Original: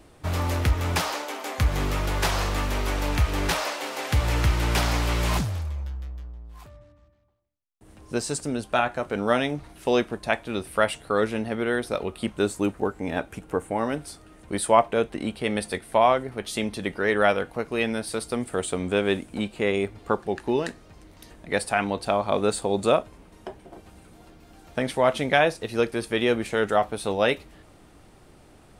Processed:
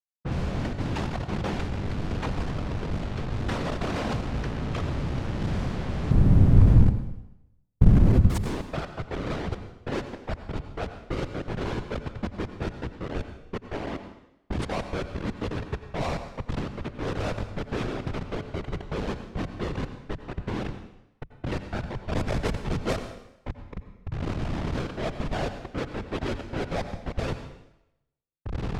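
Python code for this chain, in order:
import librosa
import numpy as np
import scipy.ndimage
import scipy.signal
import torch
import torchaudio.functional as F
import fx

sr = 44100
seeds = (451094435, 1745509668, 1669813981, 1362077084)

y = fx.recorder_agc(x, sr, target_db=-10.0, rise_db_per_s=22.0, max_gain_db=30)
y = fx.highpass(y, sr, hz=43.0, slope=12, at=(18.08, 18.92))
y = fx.schmitt(y, sr, flips_db=-17.0)
y = fx.tilt_eq(y, sr, slope=-3.5, at=(6.11, 8.27))
y = fx.leveller(y, sr, passes=3, at=(22.12, 22.93))
y = fx.whisperise(y, sr, seeds[0])
y = fx.env_lowpass(y, sr, base_hz=1600.0, full_db=-12.0)
y = fx.rev_plate(y, sr, seeds[1], rt60_s=0.88, hf_ratio=0.95, predelay_ms=75, drr_db=9.0)
y = y * 10.0 ** (-7.0 / 20.0)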